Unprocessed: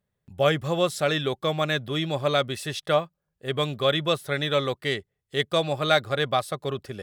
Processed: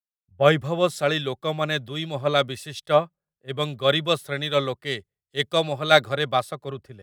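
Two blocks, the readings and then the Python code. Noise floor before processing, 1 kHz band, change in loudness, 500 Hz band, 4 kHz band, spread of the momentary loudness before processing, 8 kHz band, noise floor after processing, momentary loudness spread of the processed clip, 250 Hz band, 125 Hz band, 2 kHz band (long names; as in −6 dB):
−81 dBFS, +2.5 dB, +2.0 dB, +2.0 dB, +1.5 dB, 9 LU, −0.5 dB, below −85 dBFS, 14 LU, +0.5 dB, +0.5 dB, +2.0 dB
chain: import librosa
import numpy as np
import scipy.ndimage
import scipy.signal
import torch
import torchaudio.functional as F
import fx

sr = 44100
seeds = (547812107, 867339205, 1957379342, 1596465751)

y = fx.band_widen(x, sr, depth_pct=100)
y = F.gain(torch.from_numpy(y), 1.0).numpy()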